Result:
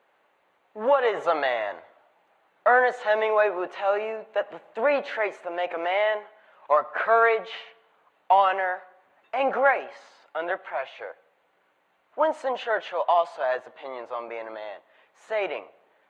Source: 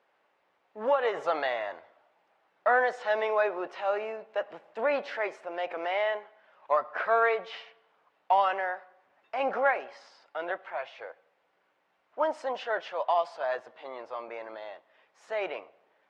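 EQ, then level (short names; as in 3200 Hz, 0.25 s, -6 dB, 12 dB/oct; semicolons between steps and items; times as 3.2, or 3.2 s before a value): bell 5000 Hz -9.5 dB 0.24 oct; notch 5500 Hz, Q 12; +5.0 dB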